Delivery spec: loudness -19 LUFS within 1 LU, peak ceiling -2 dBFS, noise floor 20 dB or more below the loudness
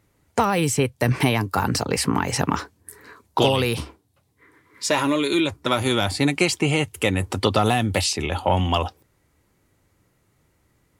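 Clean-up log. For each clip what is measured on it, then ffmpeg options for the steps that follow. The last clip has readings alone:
loudness -22.0 LUFS; peak level -6.0 dBFS; loudness target -19.0 LUFS
-> -af "volume=1.41"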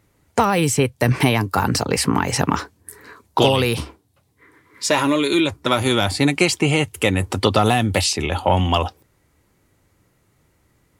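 loudness -19.0 LUFS; peak level -3.0 dBFS; noise floor -63 dBFS

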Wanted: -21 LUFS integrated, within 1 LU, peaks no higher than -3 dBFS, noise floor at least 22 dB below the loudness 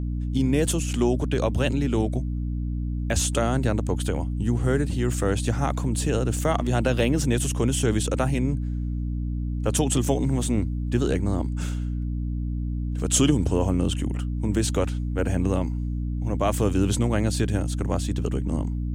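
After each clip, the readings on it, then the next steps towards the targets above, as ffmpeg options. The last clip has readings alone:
hum 60 Hz; highest harmonic 300 Hz; hum level -25 dBFS; loudness -25.0 LUFS; peak level -7.0 dBFS; loudness target -21.0 LUFS
-> -af "bandreject=f=60:t=h:w=6,bandreject=f=120:t=h:w=6,bandreject=f=180:t=h:w=6,bandreject=f=240:t=h:w=6,bandreject=f=300:t=h:w=6"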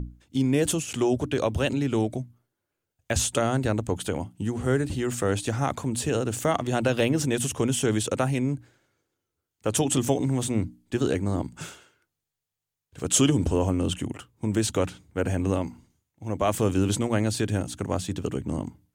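hum not found; loudness -26.5 LUFS; peak level -7.0 dBFS; loudness target -21.0 LUFS
-> -af "volume=1.88,alimiter=limit=0.708:level=0:latency=1"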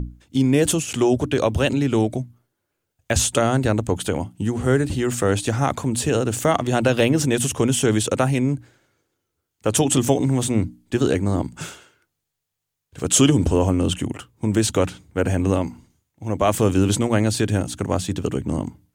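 loudness -21.0 LUFS; peak level -3.0 dBFS; noise floor -79 dBFS

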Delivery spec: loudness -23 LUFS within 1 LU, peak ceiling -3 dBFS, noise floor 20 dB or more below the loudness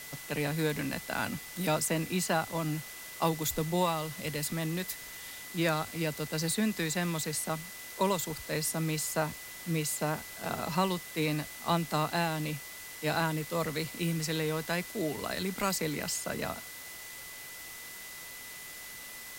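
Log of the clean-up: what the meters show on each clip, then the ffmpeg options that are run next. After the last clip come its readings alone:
steady tone 2 kHz; tone level -48 dBFS; noise floor -45 dBFS; noise floor target -53 dBFS; loudness -33.0 LUFS; peak level -16.0 dBFS; loudness target -23.0 LUFS
-> -af "bandreject=f=2000:w=30"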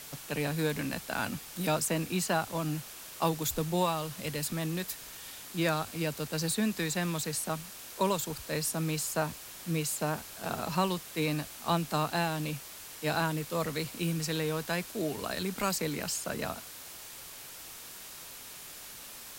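steady tone not found; noise floor -47 dBFS; noise floor target -53 dBFS
-> -af "afftdn=nr=6:nf=-47"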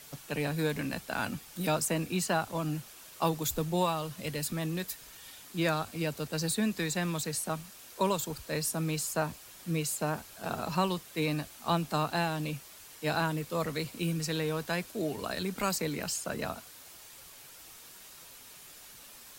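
noise floor -51 dBFS; noise floor target -53 dBFS
-> -af "afftdn=nr=6:nf=-51"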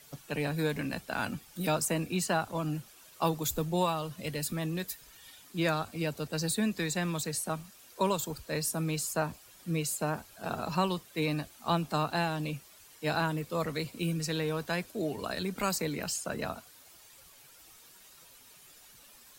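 noise floor -56 dBFS; loudness -33.0 LUFS; peak level -16.5 dBFS; loudness target -23.0 LUFS
-> -af "volume=3.16"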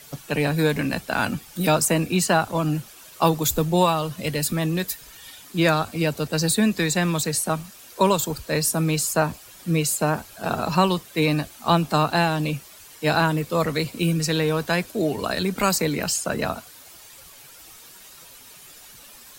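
loudness -23.0 LUFS; peak level -6.5 dBFS; noise floor -46 dBFS

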